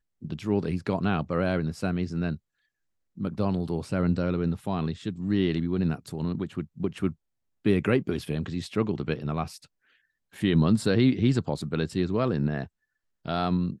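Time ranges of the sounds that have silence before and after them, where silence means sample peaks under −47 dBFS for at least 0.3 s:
0:03.17–0:07.14
0:07.65–0:09.66
0:10.33–0:12.67

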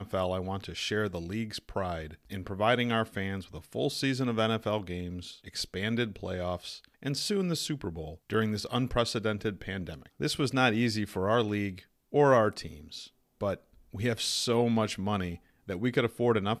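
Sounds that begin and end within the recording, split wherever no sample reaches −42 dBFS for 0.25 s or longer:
0:12.13–0:13.06
0:13.41–0:13.56
0:13.94–0:15.36

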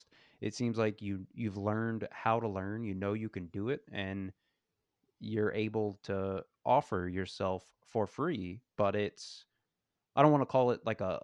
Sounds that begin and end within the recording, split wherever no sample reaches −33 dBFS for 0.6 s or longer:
0:05.24–0:09.07

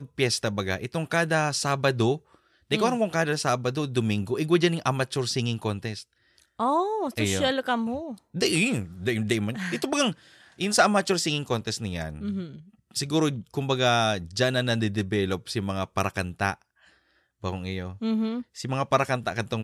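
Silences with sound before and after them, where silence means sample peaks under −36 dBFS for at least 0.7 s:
0:16.54–0:17.44

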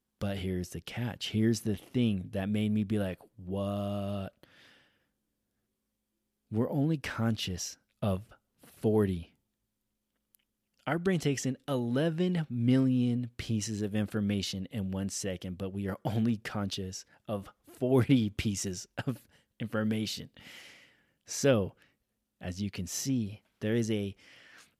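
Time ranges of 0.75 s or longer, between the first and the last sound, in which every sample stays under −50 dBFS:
0:04.72–0:06.51
0:09.25–0:10.35

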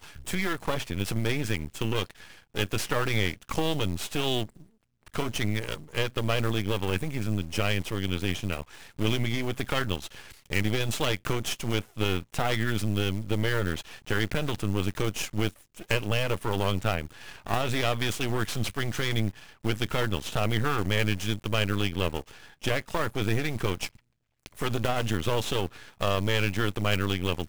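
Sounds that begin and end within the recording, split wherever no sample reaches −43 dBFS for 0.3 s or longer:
0:05.07–0:23.96

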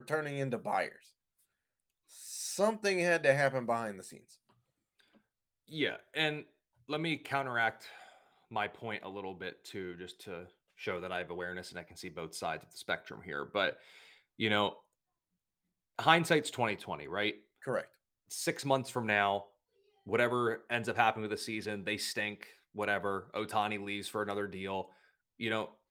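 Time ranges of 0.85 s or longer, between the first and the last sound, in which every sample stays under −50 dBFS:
0:01.06–0:02.11
0:14.77–0:15.99

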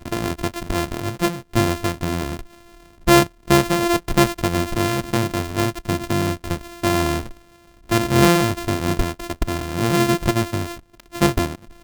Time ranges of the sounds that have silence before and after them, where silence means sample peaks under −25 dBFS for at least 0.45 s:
0:03.07–0:07.26

